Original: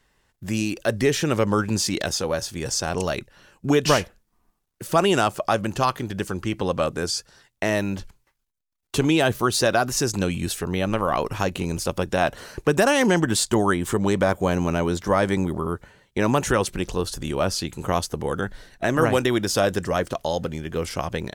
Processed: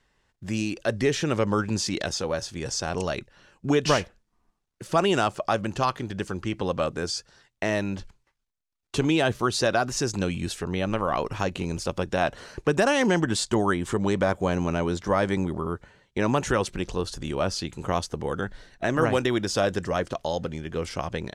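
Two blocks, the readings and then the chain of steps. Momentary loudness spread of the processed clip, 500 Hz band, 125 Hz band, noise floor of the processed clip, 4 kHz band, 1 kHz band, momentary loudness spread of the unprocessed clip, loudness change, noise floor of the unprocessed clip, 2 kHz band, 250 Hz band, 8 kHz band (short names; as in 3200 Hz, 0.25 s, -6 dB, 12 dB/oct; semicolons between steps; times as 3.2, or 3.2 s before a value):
9 LU, -3.0 dB, -3.0 dB, -77 dBFS, -3.5 dB, -3.0 dB, 9 LU, -3.0 dB, -74 dBFS, -3.0 dB, -3.0 dB, -5.5 dB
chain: LPF 7400 Hz 12 dB/oct; gain -3 dB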